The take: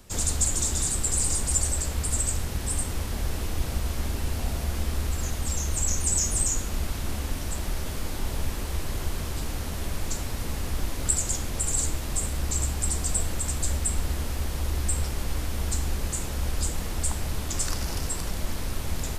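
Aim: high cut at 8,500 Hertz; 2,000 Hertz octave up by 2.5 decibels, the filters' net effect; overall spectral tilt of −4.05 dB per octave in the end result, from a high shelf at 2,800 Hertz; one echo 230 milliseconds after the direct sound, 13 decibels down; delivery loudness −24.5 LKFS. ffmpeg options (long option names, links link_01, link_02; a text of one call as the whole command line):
ffmpeg -i in.wav -af "lowpass=8500,equalizer=frequency=2000:width_type=o:gain=5.5,highshelf=frequency=2800:gain=-6,aecho=1:1:230:0.224,volume=6.5dB" out.wav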